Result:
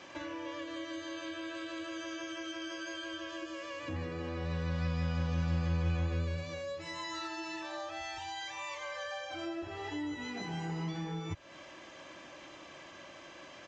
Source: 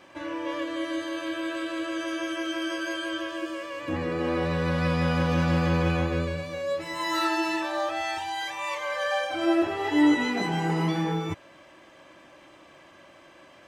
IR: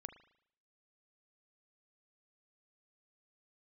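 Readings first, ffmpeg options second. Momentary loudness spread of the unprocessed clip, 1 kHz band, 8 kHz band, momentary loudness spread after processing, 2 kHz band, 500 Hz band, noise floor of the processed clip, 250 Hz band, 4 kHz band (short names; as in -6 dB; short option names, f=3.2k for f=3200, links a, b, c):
8 LU, -12.5 dB, -7.0 dB, 17 LU, -11.0 dB, -13.0 dB, -52 dBFS, -13.0 dB, -8.5 dB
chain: -filter_complex "[0:a]highshelf=f=3.6k:g=8.5,acrossover=split=110[a][b];[b]acompressor=threshold=-40dB:ratio=5[c];[a][c]amix=inputs=2:normalize=0,aresample=16000,aresample=44100"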